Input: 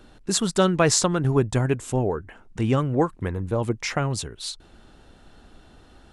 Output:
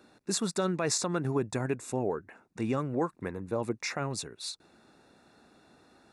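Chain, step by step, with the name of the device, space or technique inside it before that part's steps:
PA system with an anti-feedback notch (high-pass filter 170 Hz 12 dB per octave; Butterworth band-reject 3,100 Hz, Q 5.2; brickwall limiter −13.5 dBFS, peak gain reduction 10 dB)
level −5.5 dB

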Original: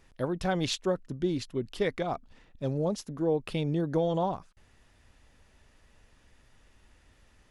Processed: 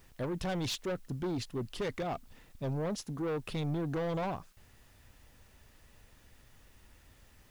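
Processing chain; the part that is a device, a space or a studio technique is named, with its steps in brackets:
open-reel tape (soft clipping −31 dBFS, distortion −8 dB; parametric band 110 Hz +3.5 dB 1.07 octaves; white noise bed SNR 32 dB)

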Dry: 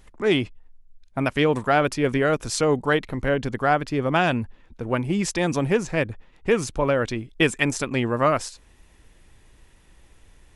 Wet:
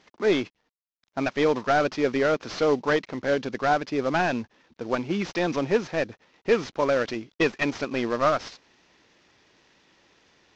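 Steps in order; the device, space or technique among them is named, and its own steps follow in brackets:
early wireless headset (high-pass filter 230 Hz 12 dB per octave; variable-slope delta modulation 32 kbit/s)

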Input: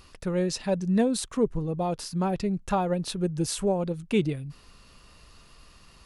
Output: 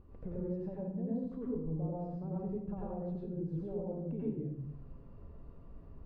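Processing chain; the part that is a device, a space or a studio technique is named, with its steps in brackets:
television next door (downward compressor 5 to 1, threshold −39 dBFS, peak gain reduction 18.5 dB; low-pass filter 490 Hz 12 dB per octave; convolution reverb RT60 0.80 s, pre-delay 85 ms, DRR −6 dB)
level −2.5 dB

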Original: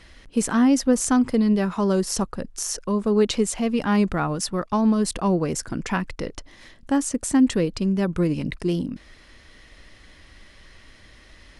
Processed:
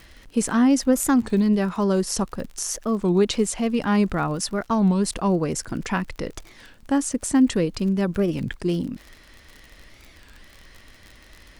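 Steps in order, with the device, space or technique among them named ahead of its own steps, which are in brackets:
warped LP (wow of a warped record 33 1/3 rpm, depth 250 cents; surface crackle 50 per second −33 dBFS; pink noise bed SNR 44 dB)

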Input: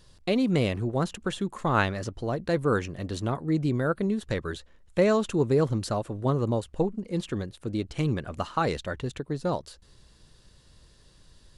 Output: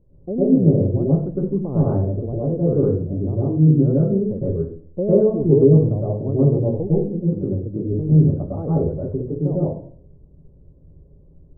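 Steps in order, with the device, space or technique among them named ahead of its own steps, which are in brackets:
next room (low-pass filter 550 Hz 24 dB per octave; convolution reverb RT60 0.50 s, pre-delay 101 ms, DRR −7.5 dB)

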